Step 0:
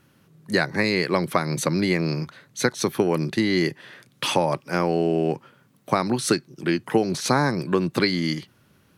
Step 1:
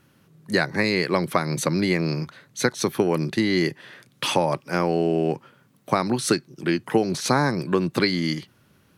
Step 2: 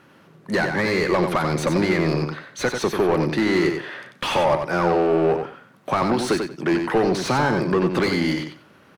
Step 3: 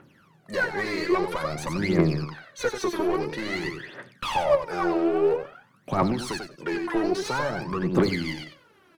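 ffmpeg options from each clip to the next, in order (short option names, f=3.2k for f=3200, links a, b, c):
-af anull
-filter_complex "[0:a]asplit=2[a][b];[b]highpass=f=720:p=1,volume=26dB,asoftclip=type=tanh:threshold=-5dB[c];[a][c]amix=inputs=2:normalize=0,lowpass=f=1.1k:p=1,volume=-6dB,asplit=2[d][e];[e]aecho=0:1:92|184|276:0.501|0.0952|0.0181[f];[d][f]amix=inputs=2:normalize=0,volume=-4.5dB"
-af "aphaser=in_gain=1:out_gain=1:delay=3.2:decay=0.75:speed=0.5:type=triangular,volume=-9dB"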